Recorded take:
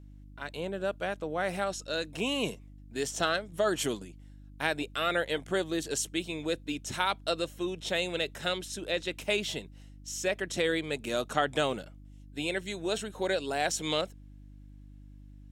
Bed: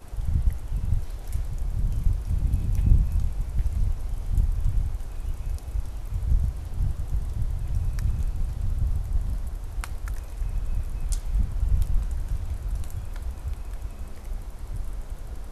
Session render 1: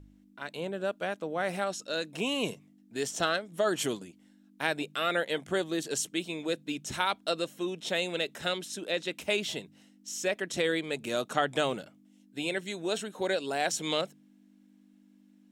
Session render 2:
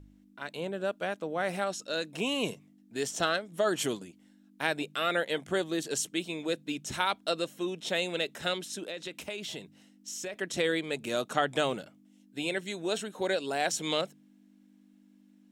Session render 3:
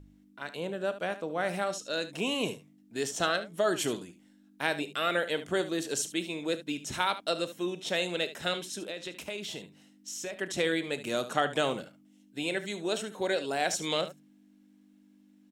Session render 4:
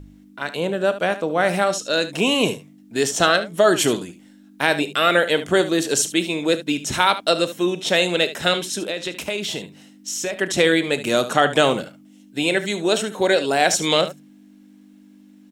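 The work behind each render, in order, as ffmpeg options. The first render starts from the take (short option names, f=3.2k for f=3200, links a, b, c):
-af "bandreject=f=50:t=h:w=4,bandreject=f=100:t=h:w=4,bandreject=f=150:t=h:w=4"
-filter_complex "[0:a]asettb=1/sr,asplit=3[a][b][c];[a]atrim=end=8.844[d];[b]atrim=start=8.84:end=10.34,asetpts=PTS-STARTPTS,afade=t=in:d=0.004:c=qsin,afade=t=out:st=1.496:d=0.004:c=qsin,acompressor=threshold=-35dB:ratio=4:attack=3.2:release=140:knee=1:detection=peak[e];[c]atrim=start=10.336[f];[d][e]acrossfade=d=0.004:c1=hsin:c2=qsin[g];[g][f]acrossfade=d=0.004:c1=qsin:c2=hsin"
-af "aecho=1:1:34|73:0.158|0.211"
-af "volume=12dB,alimiter=limit=-2dB:level=0:latency=1"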